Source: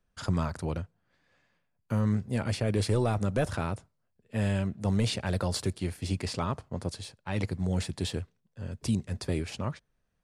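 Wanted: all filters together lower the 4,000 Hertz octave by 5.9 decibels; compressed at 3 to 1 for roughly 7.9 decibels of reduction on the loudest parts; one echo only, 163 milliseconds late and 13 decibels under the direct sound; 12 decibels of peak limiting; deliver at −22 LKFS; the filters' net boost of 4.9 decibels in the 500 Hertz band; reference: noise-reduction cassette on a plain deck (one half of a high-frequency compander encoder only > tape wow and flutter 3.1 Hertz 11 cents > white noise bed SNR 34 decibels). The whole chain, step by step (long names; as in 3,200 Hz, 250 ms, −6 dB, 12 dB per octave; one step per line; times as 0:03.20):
parametric band 500 Hz +6 dB
parametric band 4,000 Hz −7.5 dB
downward compressor 3 to 1, threshold −31 dBFS
brickwall limiter −28.5 dBFS
single-tap delay 163 ms −13 dB
one half of a high-frequency compander encoder only
tape wow and flutter 3.1 Hz 11 cents
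white noise bed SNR 34 dB
level +17.5 dB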